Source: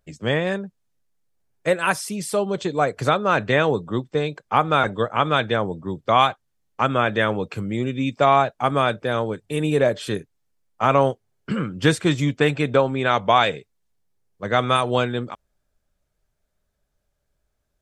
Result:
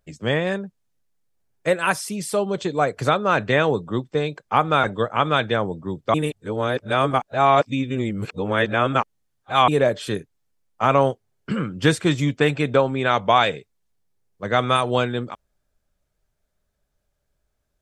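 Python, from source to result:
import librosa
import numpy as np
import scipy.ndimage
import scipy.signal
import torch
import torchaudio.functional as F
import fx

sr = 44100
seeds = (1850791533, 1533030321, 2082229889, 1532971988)

y = fx.edit(x, sr, fx.reverse_span(start_s=6.14, length_s=3.54), tone=tone)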